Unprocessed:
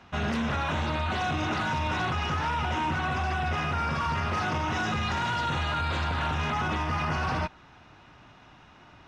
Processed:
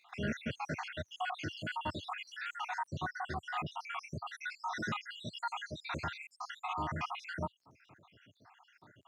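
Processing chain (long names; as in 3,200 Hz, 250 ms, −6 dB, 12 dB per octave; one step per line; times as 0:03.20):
time-frequency cells dropped at random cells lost 75%
surface crackle 240 per second −62 dBFS, from 0:02.89 22 per second
high-pass filter 95 Hz 24 dB per octave
level −4 dB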